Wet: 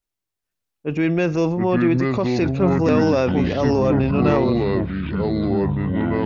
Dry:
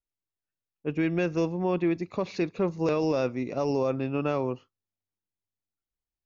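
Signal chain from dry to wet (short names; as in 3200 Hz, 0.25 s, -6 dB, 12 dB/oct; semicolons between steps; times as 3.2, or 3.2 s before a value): echoes that change speed 0.432 s, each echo -5 st, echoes 3; transient shaper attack -2 dB, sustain +6 dB; gain +7 dB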